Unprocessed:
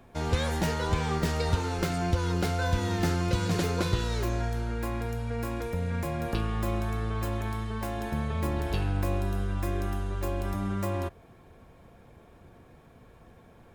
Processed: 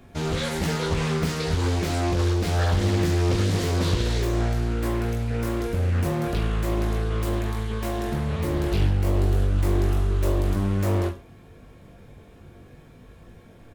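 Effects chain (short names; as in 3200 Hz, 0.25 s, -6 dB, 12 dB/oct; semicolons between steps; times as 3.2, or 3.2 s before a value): bell 900 Hz -7 dB 1.5 oct; limiter -22 dBFS, peak gain reduction 7 dB; on a send: reverse bouncing-ball echo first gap 20 ms, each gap 1.15×, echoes 5; on the sum: Doppler distortion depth 0.67 ms; gain +5 dB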